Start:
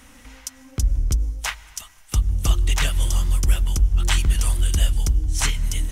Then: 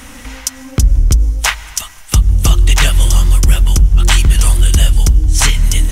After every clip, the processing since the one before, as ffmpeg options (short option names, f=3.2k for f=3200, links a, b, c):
-filter_complex "[0:a]asplit=2[a][b];[b]acompressor=threshold=-25dB:ratio=6,volume=2dB[c];[a][c]amix=inputs=2:normalize=0,apsyclip=9.5dB,volume=-2dB"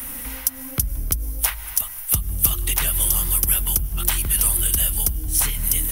-filter_complex "[0:a]acrossover=split=150|900[a][b][c];[a]acompressor=threshold=-20dB:ratio=4[d];[b]acompressor=threshold=-31dB:ratio=4[e];[c]acompressor=threshold=-21dB:ratio=4[f];[d][e][f]amix=inputs=3:normalize=0,apsyclip=6.5dB,aexciter=amount=8.6:drive=8.5:freq=10k,volume=-12dB"